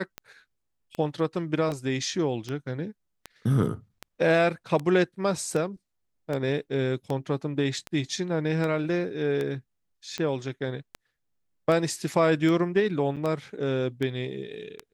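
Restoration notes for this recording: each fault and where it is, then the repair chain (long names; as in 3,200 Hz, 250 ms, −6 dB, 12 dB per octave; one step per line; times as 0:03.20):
scratch tick 78 rpm −18 dBFS
0:13.16–0:13.17: drop-out 7 ms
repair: click removal
repair the gap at 0:13.16, 7 ms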